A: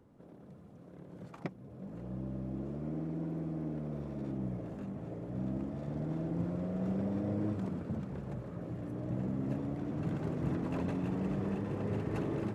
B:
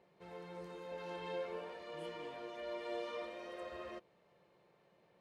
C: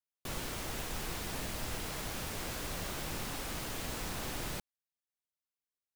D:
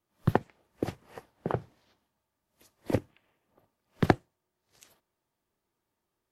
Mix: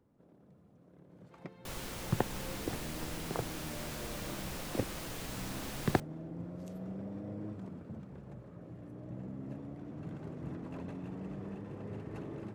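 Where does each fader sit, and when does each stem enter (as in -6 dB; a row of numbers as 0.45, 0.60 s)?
-8.0, -8.0, -3.5, -7.0 dB; 0.00, 1.10, 1.40, 1.85 s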